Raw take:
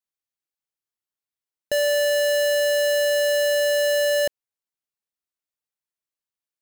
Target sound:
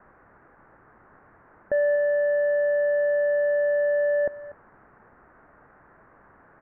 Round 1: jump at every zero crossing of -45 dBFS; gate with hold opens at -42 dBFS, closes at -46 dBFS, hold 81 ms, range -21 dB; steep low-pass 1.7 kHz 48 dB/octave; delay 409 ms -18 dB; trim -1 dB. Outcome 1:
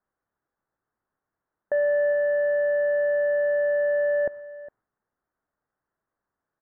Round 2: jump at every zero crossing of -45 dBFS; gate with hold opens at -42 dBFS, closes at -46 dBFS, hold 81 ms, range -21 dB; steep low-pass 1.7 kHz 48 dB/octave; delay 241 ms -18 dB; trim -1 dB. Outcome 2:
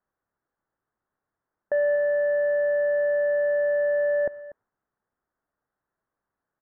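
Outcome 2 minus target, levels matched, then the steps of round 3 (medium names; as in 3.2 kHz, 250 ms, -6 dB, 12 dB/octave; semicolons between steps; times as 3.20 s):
jump at every zero crossing: distortion -10 dB
jump at every zero crossing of -34.5 dBFS; gate with hold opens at -42 dBFS, closes at -46 dBFS, hold 81 ms, range -21 dB; steep low-pass 1.7 kHz 48 dB/octave; delay 241 ms -18 dB; trim -1 dB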